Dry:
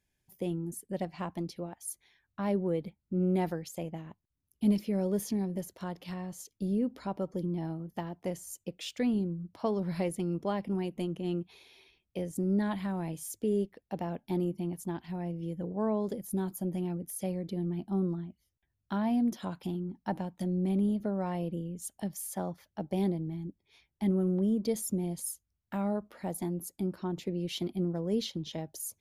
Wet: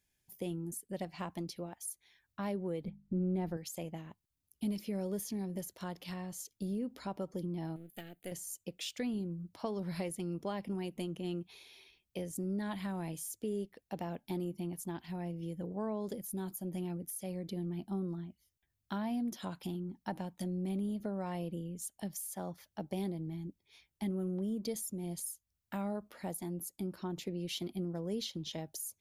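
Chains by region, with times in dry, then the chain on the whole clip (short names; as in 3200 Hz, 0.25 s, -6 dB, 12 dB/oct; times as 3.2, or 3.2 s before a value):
2.84–3.57 tilt -3 dB/oct + notches 50/100/150/200/250 Hz
7.76–8.32 half-wave gain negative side -7 dB + tone controls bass -7 dB, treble +10 dB + fixed phaser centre 2400 Hz, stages 4
whole clip: pre-emphasis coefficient 0.8; compressor 2.5:1, threshold -45 dBFS; high shelf 5600 Hz -10 dB; gain +10.5 dB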